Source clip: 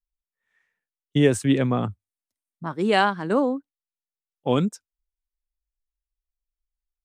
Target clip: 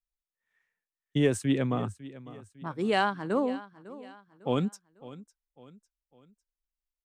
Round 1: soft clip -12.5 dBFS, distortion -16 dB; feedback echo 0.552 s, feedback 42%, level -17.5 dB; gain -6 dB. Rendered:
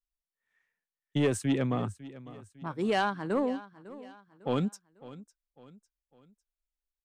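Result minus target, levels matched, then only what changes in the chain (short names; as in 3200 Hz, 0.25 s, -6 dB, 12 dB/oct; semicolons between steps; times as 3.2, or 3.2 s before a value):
soft clip: distortion +17 dB
change: soft clip -2 dBFS, distortion -33 dB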